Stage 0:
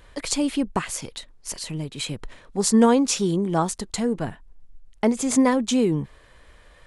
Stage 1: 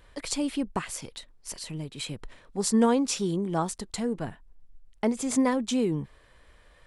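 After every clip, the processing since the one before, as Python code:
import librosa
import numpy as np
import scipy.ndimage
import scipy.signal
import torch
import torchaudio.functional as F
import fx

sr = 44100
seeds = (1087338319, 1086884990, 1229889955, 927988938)

y = fx.notch(x, sr, hz=6600.0, q=20.0)
y = F.gain(torch.from_numpy(y), -5.5).numpy()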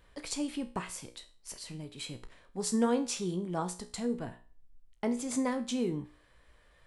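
y = fx.comb_fb(x, sr, f0_hz=60.0, decay_s=0.38, harmonics='all', damping=0.0, mix_pct=70)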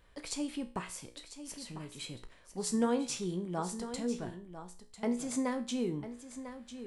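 y = x + 10.0 ** (-11.5 / 20.0) * np.pad(x, (int(998 * sr / 1000.0), 0))[:len(x)]
y = F.gain(torch.from_numpy(y), -2.0).numpy()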